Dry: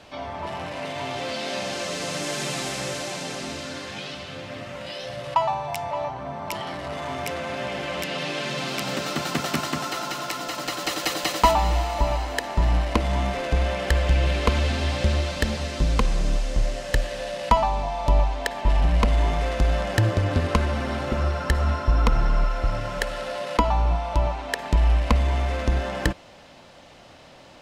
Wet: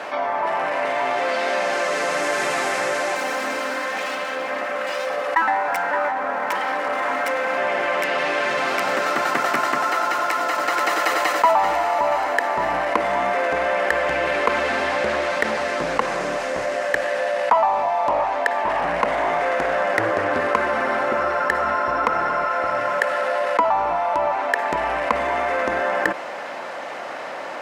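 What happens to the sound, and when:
3.15–7.57 minimum comb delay 3.8 ms
10.19–10.76 echo throw 0.48 s, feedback 55%, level -2.5 dB
14.89–20.35 Doppler distortion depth 0.33 ms
whole clip: HPF 470 Hz 12 dB/oct; resonant high shelf 2500 Hz -9.5 dB, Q 1.5; fast leveller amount 50%

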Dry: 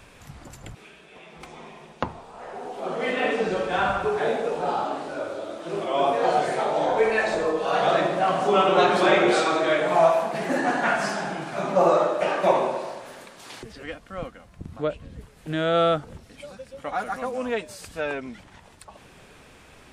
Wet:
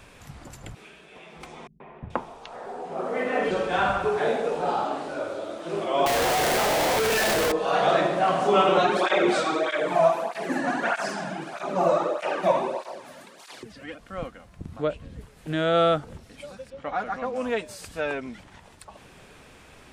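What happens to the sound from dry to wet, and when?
1.67–3.51 three bands offset in time lows, mids, highs 0.13/0.43 s, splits 180/2400 Hz
6.06–7.52 infinite clipping
8.78–13.99 tape flanging out of phase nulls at 1.6 Hz, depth 2.7 ms
16.7–17.36 air absorption 120 m

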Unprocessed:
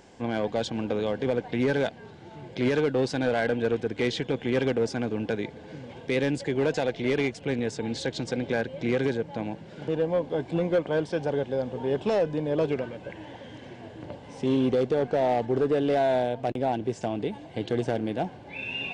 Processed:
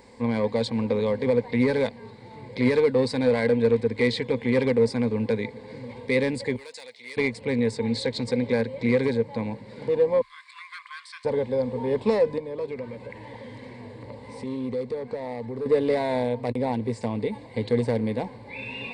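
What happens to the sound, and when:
6.56–7.17 differentiator
10.21–11.25 brick-wall FIR high-pass 1000 Hz
12.38–15.66 compressor 2:1, threshold -38 dBFS
whole clip: ripple EQ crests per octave 0.95, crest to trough 13 dB

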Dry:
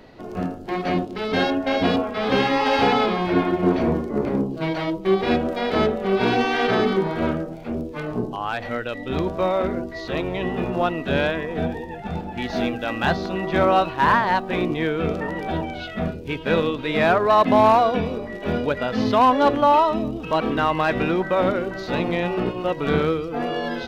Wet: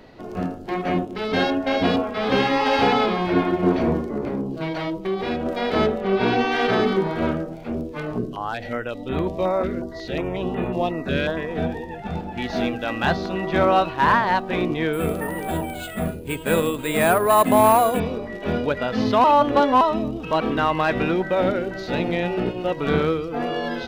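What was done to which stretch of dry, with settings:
0.74–1.15 bell 4500 Hz -8.5 dB 0.66 oct
4.03–5.46 compressor 2.5:1, threshold -23 dBFS
6–6.52 air absorption 60 m
8.18–11.37 stepped notch 5.5 Hz 850–5300 Hz
14.93–18 careless resampling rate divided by 4×, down filtered, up hold
19.24–19.81 reverse
21.13–22.72 bell 1100 Hz -11.5 dB 0.24 oct

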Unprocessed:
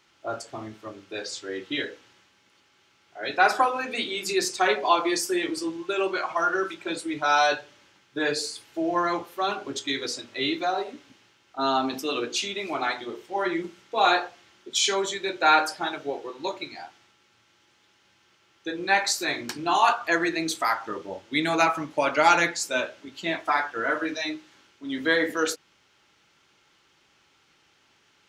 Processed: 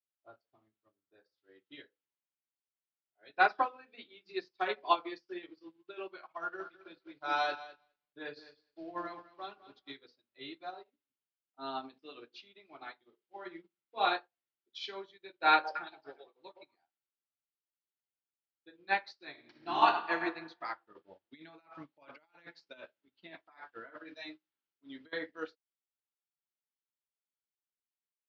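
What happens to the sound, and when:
0.94–1.38 band shelf 3100 Hz -9 dB 1.2 oct
6.39–9.97 lo-fi delay 0.207 s, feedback 35%, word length 7-bit, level -6 dB
15.52–16.78 delay with a stepping band-pass 0.116 s, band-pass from 580 Hz, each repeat 1.4 oct, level 0 dB
19.3–20.23 reverb throw, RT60 1.7 s, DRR 0.5 dB
20.95–25.13 negative-ratio compressor -29 dBFS
whole clip: steep low-pass 4900 Hz 48 dB/oct; upward expander 2.5:1, over -42 dBFS; gain -4 dB

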